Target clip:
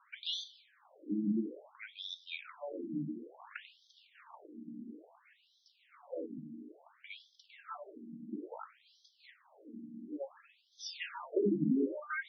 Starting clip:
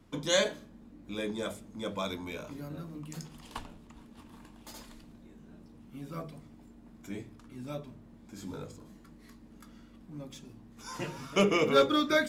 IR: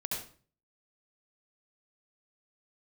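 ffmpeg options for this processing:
-filter_complex "[0:a]acrossover=split=290[s0][s1];[s1]acompressor=threshold=0.01:ratio=6[s2];[s0][s2]amix=inputs=2:normalize=0,afftfilt=real='re*between(b*sr/1024,230*pow(4500/230,0.5+0.5*sin(2*PI*0.58*pts/sr))/1.41,230*pow(4500/230,0.5+0.5*sin(2*PI*0.58*pts/sr))*1.41)':imag='im*between(b*sr/1024,230*pow(4500/230,0.5+0.5*sin(2*PI*0.58*pts/sr))/1.41,230*pow(4500/230,0.5+0.5*sin(2*PI*0.58*pts/sr))*1.41)':win_size=1024:overlap=0.75,volume=2.51"

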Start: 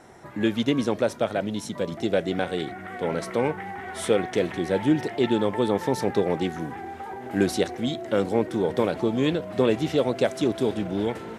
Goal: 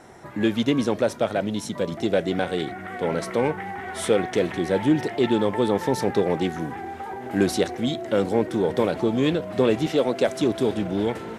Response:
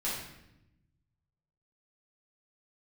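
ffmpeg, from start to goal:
-filter_complex "[0:a]asettb=1/sr,asplit=3[s0][s1][s2];[s0]atrim=end=9.864[s3];[s1]atrim=start=9.86:end=10.28,asetpts=PTS-STARTPTS,afade=t=in:d=0.004:c=qsin,afade=t=out:st=0.416:d=0.004:c=qsin,highpass=170[s4];[s2]atrim=start=10.276[s5];[s3][s4]acrossfade=d=0.004:c1=hsin:c2=qsin[s6];[s6][s5]acrossfade=d=0.004:c1=qsin:c2=hsin,asplit=2[s7][s8];[s8]asoftclip=type=hard:threshold=0.0841,volume=0.316[s9];[s7][s9]amix=inputs=2:normalize=0"

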